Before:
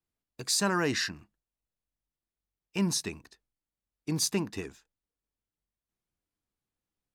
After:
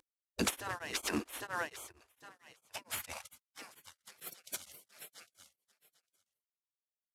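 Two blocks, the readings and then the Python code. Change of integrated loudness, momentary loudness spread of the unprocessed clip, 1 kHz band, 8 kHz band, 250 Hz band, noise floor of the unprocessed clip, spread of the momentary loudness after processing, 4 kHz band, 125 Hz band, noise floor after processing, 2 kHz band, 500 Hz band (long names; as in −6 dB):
−9.5 dB, 17 LU, −5.0 dB, −9.0 dB, −10.5 dB, below −85 dBFS, 21 LU, −9.0 dB, −15.0 dB, below −85 dBFS, −5.0 dB, −9.5 dB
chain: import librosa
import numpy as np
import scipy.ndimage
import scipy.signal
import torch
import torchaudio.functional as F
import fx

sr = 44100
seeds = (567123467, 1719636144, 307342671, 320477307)

y = fx.cvsd(x, sr, bps=64000)
y = fx.peak_eq(y, sr, hz=72.0, db=14.5, octaves=2.5)
y = fx.echo_feedback(y, sr, ms=805, feedback_pct=16, wet_db=-23.0)
y = fx.vibrato(y, sr, rate_hz=0.93, depth_cents=15.0)
y = fx.over_compress(y, sr, threshold_db=-36.0, ratio=-1.0)
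y = fx.filter_sweep_highpass(y, sr, from_hz=110.0, to_hz=950.0, start_s=1.08, end_s=4.45, q=1.9)
y = fx.peak_eq(y, sr, hz=160.0, db=8.5, octaves=0.51)
y = fx.spec_gate(y, sr, threshold_db=-20, keep='weak')
y = y * np.abs(np.cos(np.pi * 4.4 * np.arange(len(y)) / sr))
y = y * 10.0 ** (12.0 / 20.0)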